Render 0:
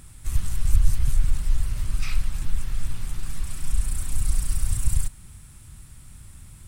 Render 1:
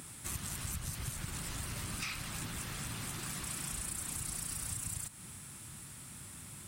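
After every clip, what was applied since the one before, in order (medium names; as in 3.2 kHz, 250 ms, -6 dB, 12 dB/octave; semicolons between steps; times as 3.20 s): high-pass 180 Hz 12 dB/octave; compression 10:1, threshold -39 dBFS, peak gain reduction 10.5 dB; trim +3.5 dB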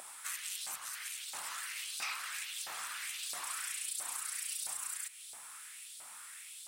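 LFO high-pass saw up 1.5 Hz 670–4200 Hz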